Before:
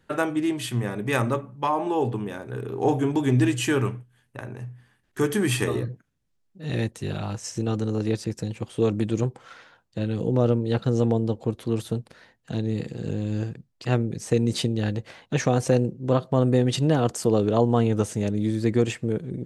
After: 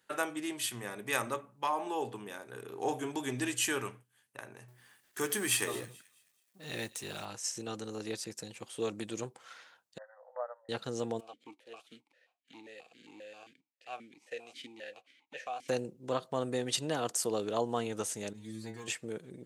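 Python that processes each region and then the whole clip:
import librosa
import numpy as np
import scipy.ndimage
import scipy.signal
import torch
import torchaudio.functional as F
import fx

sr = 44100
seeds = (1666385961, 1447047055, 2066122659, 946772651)

y = fx.chain(x, sr, fx.law_mismatch(coded='mu'),
    fx.echo_wet_highpass(ms=215, feedback_pct=31, hz=2300.0, wet_db=-17.5), at=(4.68, 7.25))
y = fx.chain(y, sr, fx.brickwall_bandpass(low_hz=500.0, high_hz=2000.0),
    fx.upward_expand(threshold_db=-37.0, expansion=1.5), at=(9.98, 10.69))
y = fx.envelope_flatten(y, sr, power=0.6, at=(11.19, 15.68), fade=0.02)
y = fx.vowel_held(y, sr, hz=7.5, at=(11.19, 15.68), fade=0.02)
y = fx.chain(y, sr, fx.peak_eq(hz=320.0, db=-5.0, octaves=0.38),
    fx.leveller(passes=1),
    fx.stiff_resonator(f0_hz=110.0, decay_s=0.36, stiffness=0.002), at=(18.33, 18.88))
y = fx.highpass(y, sr, hz=780.0, slope=6)
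y = fx.high_shelf(y, sr, hz=5900.0, db=9.5)
y = y * librosa.db_to_amplitude(-5.5)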